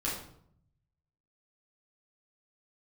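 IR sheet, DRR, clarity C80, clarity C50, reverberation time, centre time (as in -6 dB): -7.0 dB, 7.5 dB, 3.5 dB, 0.65 s, 44 ms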